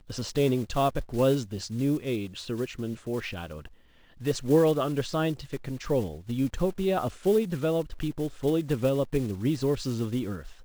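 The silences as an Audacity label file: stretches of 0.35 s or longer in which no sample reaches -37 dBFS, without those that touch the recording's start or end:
3.660000	4.210000	silence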